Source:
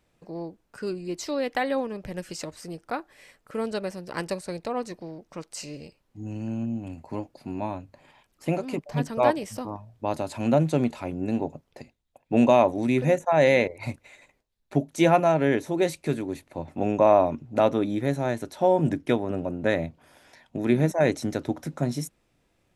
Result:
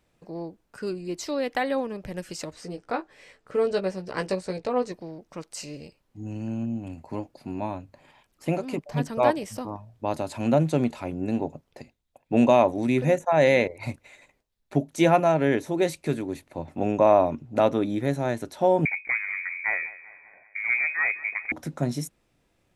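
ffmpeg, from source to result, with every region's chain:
-filter_complex "[0:a]asettb=1/sr,asplit=3[s0][s1][s2];[s0]atrim=end=2.534[s3];[s1]atrim=start=2.53:end=4.92,asetpts=PTS-STARTPTS,afade=t=in:d=0.004:c=qsin,afade=t=out:st=2.386:d=0.004:c=qsin,lowpass=7200,equalizer=f=450:t=o:w=0.42:g=5.5,asplit=2[s4][s5];[s5]adelay=16,volume=0.531[s6];[s4][s6]amix=inputs=2:normalize=0,atrim=end_sample=105399[s7];[s2]atrim=start=4.916[s8];[s3][s7]acrossfade=d=0.004:c1=hsin:c2=qsin[s9];[s9][s8]acrossfade=d=0.004:c1=qsin:c2=hsin,asettb=1/sr,asplit=3[s10][s11][s12];[s10]atrim=end=18.854[s13];[s11]atrim=start=18.85:end=21.52,asetpts=PTS-STARTPTS,afade=t=in:d=0.004:c=qsin,afade=t=out:st=2.666:d=0.004:c=qsin,aeval=exprs='(tanh(7.08*val(0)+0.6)-tanh(0.6))/7.08':c=same,aecho=1:1:194|388|582|776|970:0.126|0.0705|0.0395|0.0221|0.0124,atrim=end_sample=117747,lowpass=f=2100:t=q:w=0.5098,lowpass=f=2100:t=q:w=0.6013,lowpass=f=2100:t=q:w=0.9,lowpass=f=2100:t=q:w=2.563,afreqshift=-2500[s14];[s12]atrim=start=21.516[s15];[s13][s14]acrossfade=d=0.004:c1=hsin:c2=qsin[s16];[s16][s15]acrossfade=d=0.004:c1=qsin:c2=hsin"

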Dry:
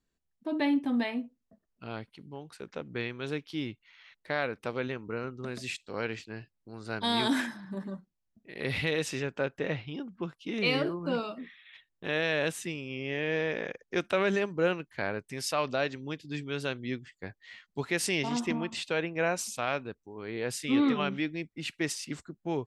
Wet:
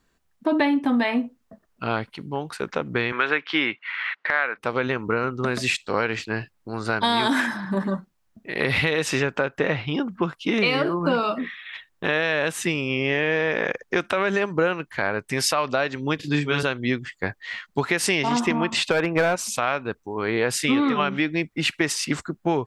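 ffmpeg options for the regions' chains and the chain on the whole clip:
-filter_complex "[0:a]asettb=1/sr,asplit=3[s0][s1][s2];[s0]atrim=end=3.124[s3];[s1]atrim=start=3.12:end=4.57,asetpts=PTS-STARTPTS,afade=t=in:d=0.004:c=qsin,afade=t=out:st=1.446:d=0.004:c=qsin,highpass=260,lowpass=3500,equalizer=f=1800:w=0.63:g=13.5[s4];[s2]atrim=start=4.566[s5];[s3][s4]acrossfade=d=0.004:c1=hsin:c2=qsin[s6];[s6][s5]acrossfade=d=0.004:c1=qsin:c2=hsin,asettb=1/sr,asplit=3[s7][s8][s9];[s7]atrim=end=16.164[s10];[s8]atrim=start=16.16:end=16.63,asetpts=PTS-STARTPTS,afade=t=in:d=0.004:c=qsin,afade=t=out:st=0.466:d=0.004:c=qsin,highpass=62,asplit=2[s11][s12];[s12]adelay=34,volume=0.794[s13];[s11][s13]amix=inputs=2:normalize=0,atrim=end_sample=20727[s14];[s9]atrim=start=16.626[s15];[s10][s14]acrossfade=d=0.004:c1=hsin:c2=qsin[s16];[s16][s15]acrossfade=d=0.004:c1=qsin:c2=hsin,asettb=1/sr,asplit=3[s17][s18][s19];[s17]atrim=end=18.894[s20];[s18]atrim=start=18.89:end=19.36,asetpts=PTS-STARTPTS,afade=t=in:d=0.004:c=qsin,afade=t=out:st=0.466:d=0.004:c=qsin,highshelf=f=3200:g=-7.5,acontrast=83,asoftclip=type=hard:threshold=0.112[s21];[s19]atrim=start=19.356[s22];[s20][s21]acrossfade=d=0.004:c1=hsin:c2=qsin[s23];[s23][s22]acrossfade=d=0.004:c1=qsin:c2=hsin,equalizer=f=1200:w=0.77:g=7,acompressor=threshold=0.0316:ratio=10,alimiter=level_in=9.44:limit=0.891:release=50:level=0:latency=1,volume=0.447"

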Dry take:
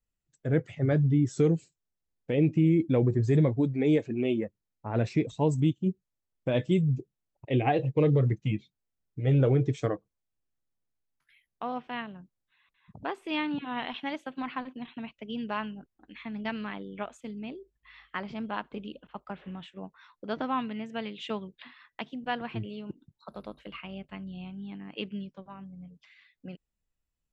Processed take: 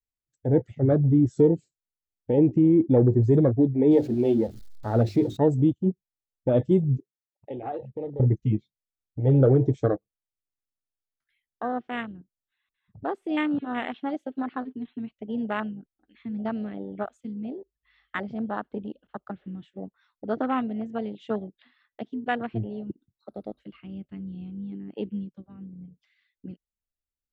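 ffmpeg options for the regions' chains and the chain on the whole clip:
-filter_complex "[0:a]asettb=1/sr,asplit=3[s0][s1][s2];[s0]atrim=end=3.914[s3];[s1]atrim=start=3.91:end=5.37,asetpts=PTS-STARTPTS,afade=t=in:d=0.004:c=qsin,afade=t=out:st=1.456:d=0.004:c=qsin,aeval=exprs='val(0)+0.5*0.0119*sgn(val(0))':c=same,equalizer=f=4200:t=o:w=0.88:g=7.5,bandreject=f=50:t=h:w=6,bandreject=f=100:t=h:w=6,bandreject=f=150:t=h:w=6,bandreject=f=200:t=h:w=6,bandreject=f=250:t=h:w=6,bandreject=f=300:t=h:w=6,bandreject=f=350:t=h:w=6,bandreject=f=400:t=h:w=6[s4];[s2]atrim=start=5.366[s5];[s3][s4]acrossfade=d=0.004:c1=hsin:c2=qsin[s6];[s6][s5]acrossfade=d=0.004:c1=qsin:c2=hsin,asettb=1/sr,asplit=3[s7][s8][s9];[s7]atrim=end=6.974[s10];[s8]atrim=start=6.97:end=8.2,asetpts=PTS-STARTPTS,afade=t=in:d=0.004:c=qsin,afade=t=out:st=1.226:d=0.004:c=qsin,acompressor=threshold=0.0251:ratio=4:attack=3.2:release=140:knee=1:detection=peak,highpass=f=480:p=1[s11];[s9]atrim=start=8.196[s12];[s10][s11]acrossfade=d=0.004:c1=hsin:c2=qsin[s13];[s13][s12]acrossfade=d=0.004:c1=qsin:c2=hsin,afwtdn=0.0178,equalizer=f=160:t=o:w=0.33:g=-8,equalizer=f=1000:t=o:w=0.33:g=-9,equalizer=f=2500:t=o:w=0.33:g=-5,volume=2.11"

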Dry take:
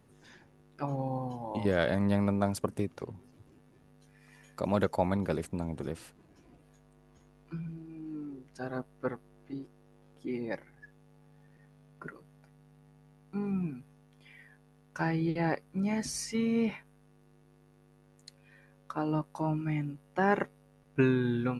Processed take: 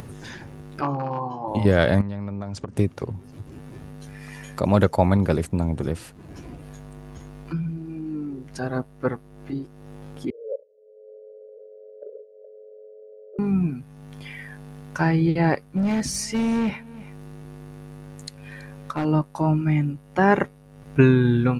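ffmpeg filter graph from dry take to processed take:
-filter_complex "[0:a]asettb=1/sr,asplit=3[s0][s1][s2];[s0]atrim=end=0.814[s3];[s1]atrim=start=0.81:end=1.48,asetpts=PTS-STARTPTS,afade=t=in:d=0.004:c=qsin,afade=t=out:st=0.666:d=0.004:c=qsin,aeval=exprs='0.0631*(abs(mod(val(0)/0.0631+3,4)-2)-1)':c=same,highpass=220,equalizer=f=230:t=q:w=4:g=-9,equalizer=f=330:t=q:w=4:g=6,equalizer=f=510:t=q:w=4:g=-5,equalizer=f=1100:t=q:w=4:g=10,equalizer=f=2000:t=q:w=4:g=-10,equalizer=f=3600:t=q:w=4:g=-9,lowpass=f=5100:w=0.5412,lowpass=f=5100:w=1.3066,asplit=2[s4][s5];[s5]adelay=21,volume=0.376[s6];[s4][s6]amix=inputs=2:normalize=0,atrim=end_sample=29547[s7];[s2]atrim=start=1.476[s8];[s3][s7]acrossfade=d=0.004:c1=hsin:c2=qsin[s9];[s9][s8]acrossfade=d=0.004:c1=qsin:c2=hsin,asettb=1/sr,asplit=3[s10][s11][s12];[s10]atrim=end=2.014[s13];[s11]atrim=start=2.01:end=2.77,asetpts=PTS-STARTPTS,afade=t=in:d=0.004:c=qsin,afade=t=out:st=0.756:d=0.004:c=qsin,lowpass=f=7000:w=0.5412,lowpass=f=7000:w=1.3066,acompressor=threshold=0.0112:ratio=5:attack=3.2:release=140:knee=1:detection=peak[s14];[s12]atrim=start=2.766[s15];[s13][s14]acrossfade=d=0.004:c1=hsin:c2=qsin[s16];[s16][s15]acrossfade=d=0.004:c1=qsin:c2=hsin,asettb=1/sr,asplit=3[s17][s18][s19];[s17]atrim=end=10.304[s20];[s18]atrim=start=10.3:end=13.39,asetpts=PTS-STARTPTS,afade=t=in:d=0.004:c=qsin,afade=t=out:st=3.086:d=0.004:c=qsin,asuperpass=centerf=520:order=12:qfactor=2.7,afreqshift=-19[s21];[s19]atrim=start=13.386[s22];[s20][s21]acrossfade=d=0.004:c1=hsin:c2=qsin[s23];[s23][s22]acrossfade=d=0.004:c1=qsin:c2=hsin,asettb=1/sr,asplit=3[s24][s25][s26];[s24]atrim=end=15.684[s27];[s25]atrim=start=15.68:end=19.05,asetpts=PTS-STARTPTS,afade=t=in:d=0.004:c=qsin,afade=t=out:st=3.366:d=0.004:c=qsin,asoftclip=type=hard:threshold=0.0335,aecho=1:1:327:0.0708,atrim=end_sample=148617[s28];[s26]atrim=start=19.046[s29];[s27][s28]acrossfade=d=0.004:c1=hsin:c2=qsin[s30];[s30][s29]acrossfade=d=0.004:c1=qsin:c2=hsin,equalizer=f=85:w=0.84:g=7.5,acompressor=mode=upward:threshold=0.0141:ratio=2.5,volume=2.66"

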